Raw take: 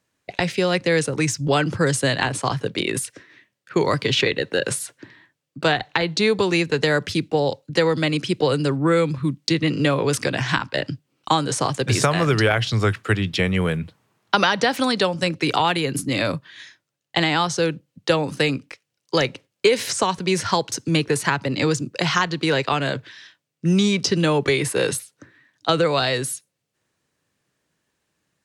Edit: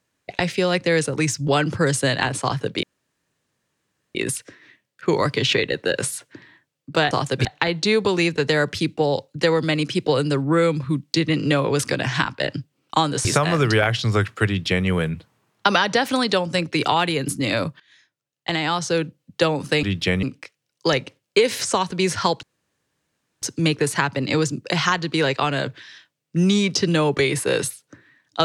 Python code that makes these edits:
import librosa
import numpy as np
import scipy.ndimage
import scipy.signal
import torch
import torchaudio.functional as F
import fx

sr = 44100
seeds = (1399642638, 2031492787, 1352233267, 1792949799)

y = fx.edit(x, sr, fx.insert_room_tone(at_s=2.83, length_s=1.32),
    fx.move(start_s=11.59, length_s=0.34, to_s=5.79),
    fx.duplicate(start_s=13.15, length_s=0.4, to_s=18.51),
    fx.fade_in_from(start_s=16.48, length_s=1.22, floor_db=-18.0),
    fx.insert_room_tone(at_s=20.71, length_s=0.99), tone=tone)